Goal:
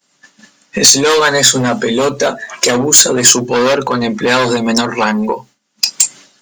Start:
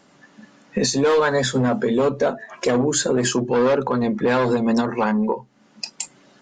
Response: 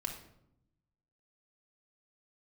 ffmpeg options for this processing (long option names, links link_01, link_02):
-af "crystalizer=i=9:c=0,acontrast=30,agate=range=-33dB:threshold=-29dB:ratio=3:detection=peak,volume=-1dB"